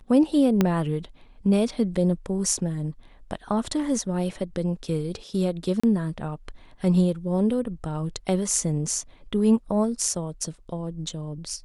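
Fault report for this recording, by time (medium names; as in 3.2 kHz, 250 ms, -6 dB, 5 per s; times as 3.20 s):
0.61 s: pop -7 dBFS
5.80–5.83 s: dropout 35 ms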